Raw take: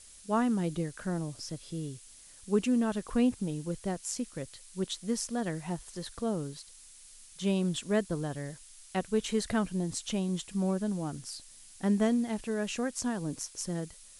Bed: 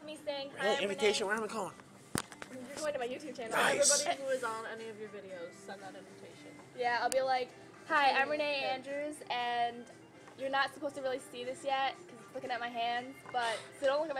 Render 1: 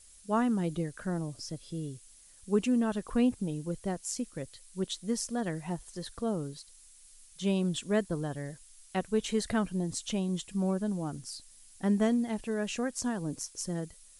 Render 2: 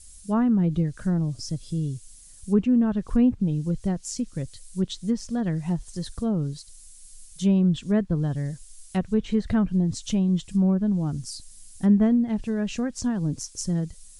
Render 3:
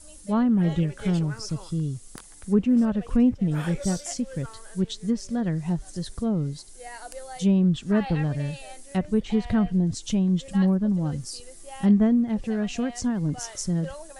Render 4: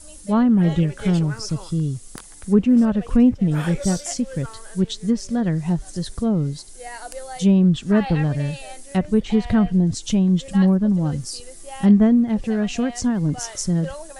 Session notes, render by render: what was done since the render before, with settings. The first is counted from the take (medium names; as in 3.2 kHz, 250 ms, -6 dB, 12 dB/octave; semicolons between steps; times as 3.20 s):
noise reduction 6 dB, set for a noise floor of -54 dBFS
low-pass that closes with the level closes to 2 kHz, closed at -25.5 dBFS; tone controls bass +14 dB, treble +8 dB
add bed -8.5 dB
trim +5 dB